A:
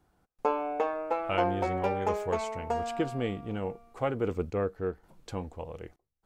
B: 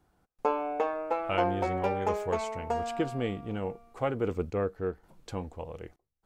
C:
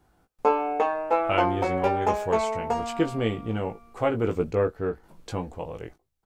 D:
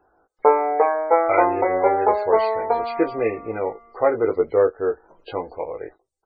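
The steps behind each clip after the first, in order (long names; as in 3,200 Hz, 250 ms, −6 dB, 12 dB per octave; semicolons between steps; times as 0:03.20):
no processing that can be heard
double-tracking delay 18 ms −5 dB; level +4.5 dB
hearing-aid frequency compression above 1,600 Hz 1.5 to 1; spectral peaks only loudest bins 64; low shelf with overshoot 280 Hz −12.5 dB, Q 1.5; level +4.5 dB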